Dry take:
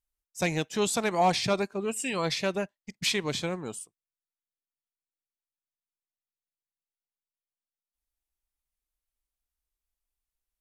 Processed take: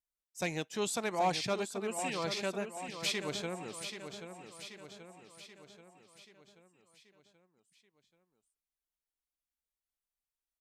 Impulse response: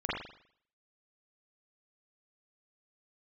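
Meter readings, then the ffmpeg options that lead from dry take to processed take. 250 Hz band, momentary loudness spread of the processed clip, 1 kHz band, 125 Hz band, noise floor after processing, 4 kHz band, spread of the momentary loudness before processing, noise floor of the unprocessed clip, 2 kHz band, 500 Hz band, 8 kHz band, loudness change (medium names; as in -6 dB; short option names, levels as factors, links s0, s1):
-7.5 dB, 21 LU, -6.0 dB, -8.5 dB, under -85 dBFS, -6.0 dB, 14 LU, under -85 dBFS, -6.0 dB, -6.0 dB, -6.0 dB, -7.5 dB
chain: -af "lowshelf=f=100:g=-10,aecho=1:1:782|1564|2346|3128|3910|4692:0.355|0.192|0.103|0.0559|0.0302|0.0163,volume=0.473"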